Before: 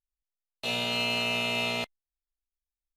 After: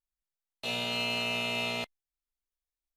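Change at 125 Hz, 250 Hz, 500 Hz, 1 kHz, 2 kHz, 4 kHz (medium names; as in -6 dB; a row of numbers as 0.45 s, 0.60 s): -3.0 dB, -3.0 dB, -3.0 dB, -3.0 dB, -3.0 dB, -3.0 dB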